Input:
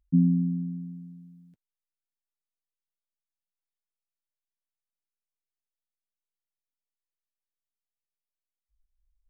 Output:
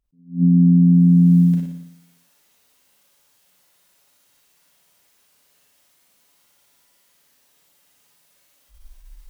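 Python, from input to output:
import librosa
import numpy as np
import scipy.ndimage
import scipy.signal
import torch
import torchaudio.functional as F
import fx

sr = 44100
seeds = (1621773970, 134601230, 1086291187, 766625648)

y = fx.tracing_dist(x, sr, depth_ms=0.096)
y = fx.recorder_agc(y, sr, target_db=-16.0, rise_db_per_s=31.0, max_gain_db=30)
y = fx.highpass(y, sr, hz=45.0, slope=6)
y = y + 0.32 * np.pad(y, (int(7.1 * sr / 1000.0), 0))[:len(y)]
y = fx.room_flutter(y, sr, wall_m=10.0, rt60_s=0.76)
y = fx.rev_schroeder(y, sr, rt60_s=0.41, comb_ms=31, drr_db=0.0)
y = fx.attack_slew(y, sr, db_per_s=200.0)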